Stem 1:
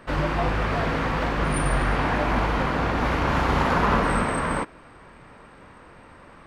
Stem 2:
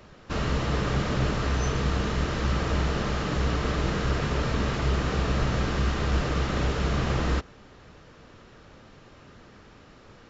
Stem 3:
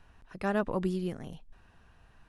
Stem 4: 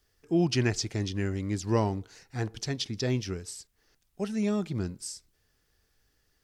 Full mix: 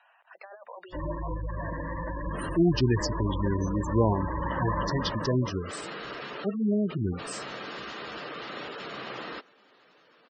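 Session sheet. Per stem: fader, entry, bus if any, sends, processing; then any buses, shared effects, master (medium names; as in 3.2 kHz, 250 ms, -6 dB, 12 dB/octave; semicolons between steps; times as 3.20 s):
-11.0 dB, 0.85 s, no send, vibrato 1.1 Hz 21 cents; rippled EQ curve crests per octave 1.2, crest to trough 12 dB
-8.0 dB, 2.00 s, no send, high-pass 330 Hz 12 dB/octave; treble shelf 2.4 kHz +9.5 dB
+0.5 dB, 0.00 s, no send, elliptic band-pass 640–7800 Hz, stop band 70 dB; compressor with a negative ratio -39 dBFS, ratio -0.5; saturation -37 dBFS, distortion -7 dB
+2.5 dB, 2.25 s, no send, none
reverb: none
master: peaking EQ 5.7 kHz -3 dB 0.3 oct; spectral gate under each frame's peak -15 dB strong; treble shelf 9.8 kHz -10 dB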